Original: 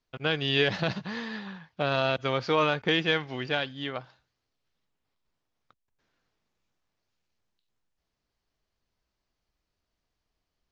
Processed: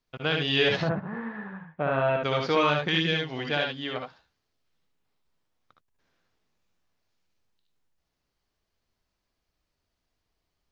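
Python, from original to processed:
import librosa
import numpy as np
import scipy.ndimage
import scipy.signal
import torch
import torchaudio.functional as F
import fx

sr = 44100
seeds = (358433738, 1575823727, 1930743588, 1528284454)

y = fx.lowpass(x, sr, hz=fx.line((0.81, 1500.0), (2.23, 2300.0)), slope=24, at=(0.81, 2.23), fade=0.02)
y = fx.peak_eq(y, sr, hz=fx.line((2.87, 490.0), (3.27, 1600.0)), db=-14.0, octaves=1.0, at=(2.87, 3.27), fade=0.02)
y = fx.room_early_taps(y, sr, ms=(62, 74), db=(-6.0, -4.5))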